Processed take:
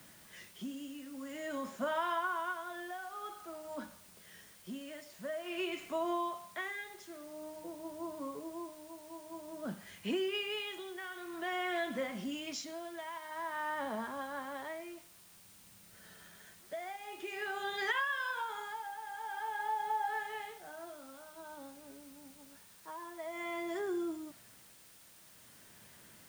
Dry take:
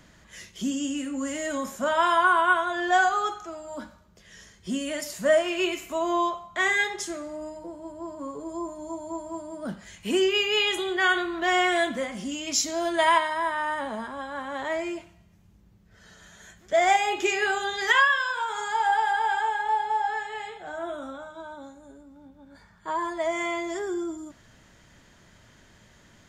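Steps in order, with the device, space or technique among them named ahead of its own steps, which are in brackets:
medium wave at night (band-pass filter 110–4,200 Hz; downward compressor, threshold −26 dBFS, peak gain reduction 10.5 dB; amplitude tremolo 0.5 Hz, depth 71%; steady tone 9,000 Hz −62 dBFS; white noise bed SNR 19 dB)
level −5 dB

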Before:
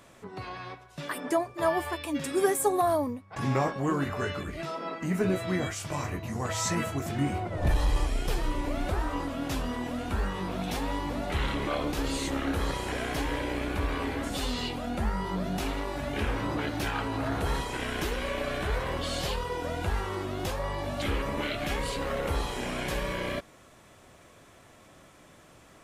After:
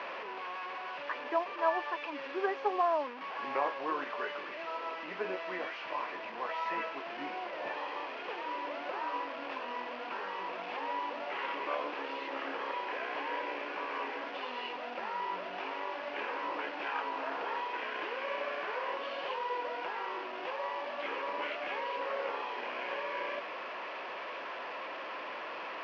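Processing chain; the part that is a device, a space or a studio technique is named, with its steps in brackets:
digital answering machine (band-pass filter 310–3,300 Hz; linear delta modulator 32 kbit/s, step −31.5 dBFS; loudspeaker in its box 370–3,900 Hz, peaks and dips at 520 Hz +4 dB, 990 Hz +8 dB, 1,700 Hz +3 dB, 2,600 Hz +6 dB, 3,800 Hz −7 dB)
level −6 dB

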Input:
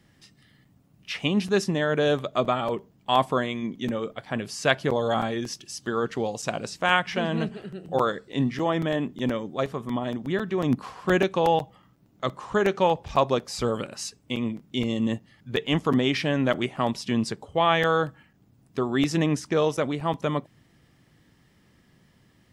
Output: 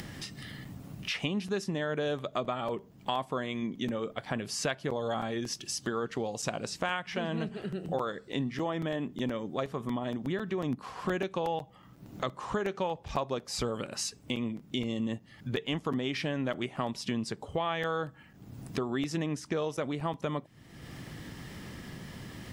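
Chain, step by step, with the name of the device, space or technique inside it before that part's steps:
upward and downward compression (upward compression, threshold −34 dBFS; downward compressor 4 to 1, threshold −34 dBFS, peak gain reduction 16 dB)
level +3 dB

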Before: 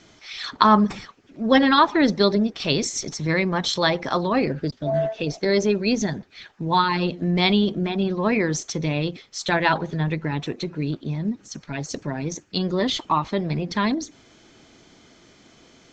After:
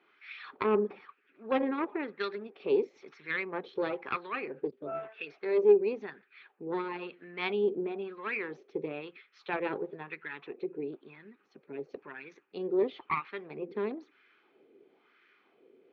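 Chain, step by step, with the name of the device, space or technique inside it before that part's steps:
0:01.61–0:02.20: high-frequency loss of the air 300 metres
wah-wah guitar rig (LFO wah 1 Hz 440–1,600 Hz, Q 2.4; tube saturation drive 17 dB, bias 0.7; loudspeaker in its box 110–4,100 Hz, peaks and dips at 110 Hz −9 dB, 170 Hz −3 dB, 400 Hz +9 dB, 650 Hz −10 dB, 950 Hz −5 dB, 2,500 Hz +9 dB)

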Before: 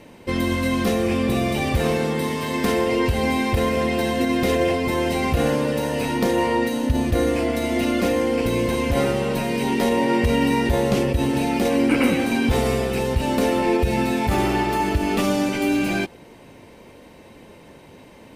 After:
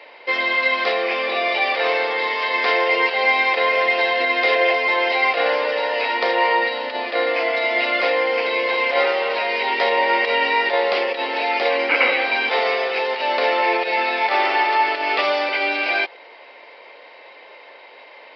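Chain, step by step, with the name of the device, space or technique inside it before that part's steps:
musical greeting card (downsampling to 11,025 Hz; high-pass filter 540 Hz 24 dB per octave; parametric band 2,100 Hz +6.5 dB 0.32 octaves)
level +6 dB

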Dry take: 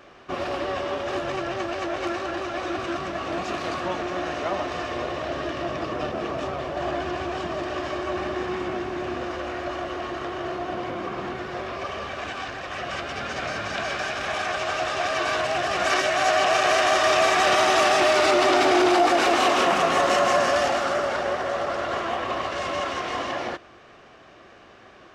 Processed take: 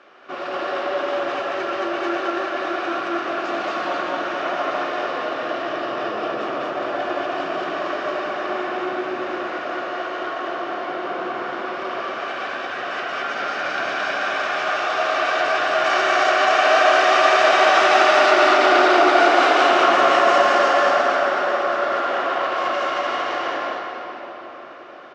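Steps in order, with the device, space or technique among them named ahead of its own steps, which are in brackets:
station announcement (band-pass filter 320–4,800 Hz; parametric band 1,400 Hz +7 dB 0.21 octaves; loudspeakers that aren't time-aligned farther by 49 metres −11 dB, 77 metres −1 dB; convolution reverb RT60 5.1 s, pre-delay 30 ms, DRR 1 dB)
level −1 dB

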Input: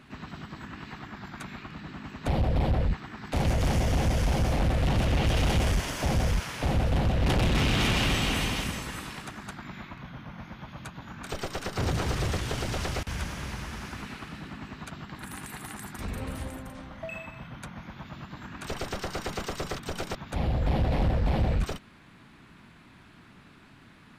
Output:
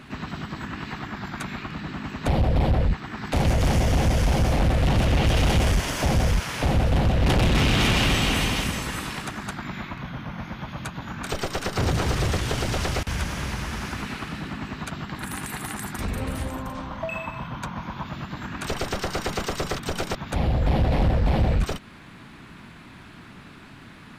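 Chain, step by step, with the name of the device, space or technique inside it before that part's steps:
parallel compression (in parallel at −1 dB: downward compressor, threshold −37 dBFS, peak gain reduction 14.5 dB)
0:16.50–0:18.10: on the sum: thirty-one-band graphic EQ 1,000 Hz +9 dB, 2,000 Hz −4 dB, 10,000 Hz −12 dB
level +3 dB

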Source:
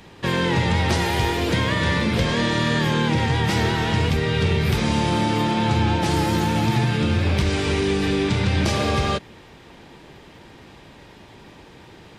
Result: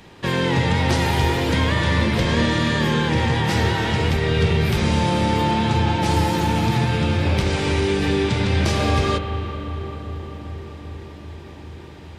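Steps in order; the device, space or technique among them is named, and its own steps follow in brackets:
dub delay into a spring reverb (feedback echo with a low-pass in the loop 392 ms, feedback 81%, low-pass 1,500 Hz, level −13.5 dB; spring reverb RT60 3.8 s, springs 38 ms, chirp 25 ms, DRR 8 dB)

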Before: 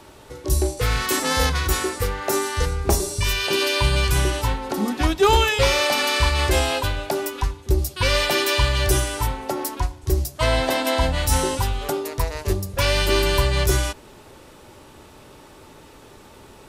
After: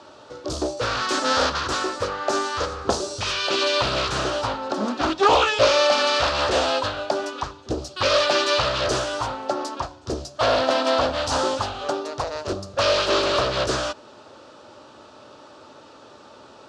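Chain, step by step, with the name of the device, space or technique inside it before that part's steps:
full-range speaker at full volume (highs frequency-modulated by the lows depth 0.86 ms; loudspeaker in its box 160–6,500 Hz, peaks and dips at 170 Hz −9 dB, 400 Hz −4 dB, 590 Hz +6 dB, 1,300 Hz +6 dB, 2,100 Hz −9 dB, 4,500 Hz +3 dB)

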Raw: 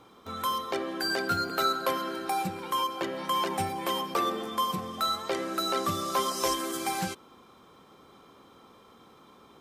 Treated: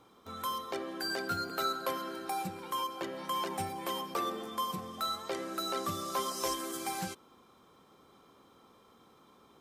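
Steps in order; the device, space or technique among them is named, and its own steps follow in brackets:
exciter from parts (in parallel at −8 dB: high-pass filter 2,300 Hz 12 dB per octave + soft clipping −31 dBFS, distortion −15 dB + high-pass filter 4,200 Hz 6 dB per octave)
on the sum: level −6 dB

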